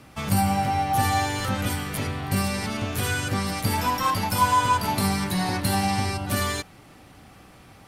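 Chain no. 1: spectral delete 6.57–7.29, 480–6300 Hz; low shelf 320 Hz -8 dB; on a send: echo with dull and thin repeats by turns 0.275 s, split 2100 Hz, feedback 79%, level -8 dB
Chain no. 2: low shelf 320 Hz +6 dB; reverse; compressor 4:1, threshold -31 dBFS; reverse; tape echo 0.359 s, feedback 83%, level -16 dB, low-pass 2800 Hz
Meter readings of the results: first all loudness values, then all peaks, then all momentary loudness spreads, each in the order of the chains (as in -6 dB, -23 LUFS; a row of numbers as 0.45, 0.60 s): -25.5, -32.5 LUFS; -9.5, -19.0 dBFS; 13, 11 LU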